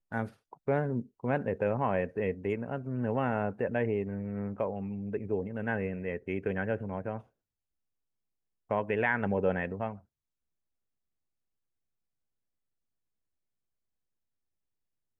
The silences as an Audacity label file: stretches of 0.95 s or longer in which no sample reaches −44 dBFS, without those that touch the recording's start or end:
7.210000	8.700000	silence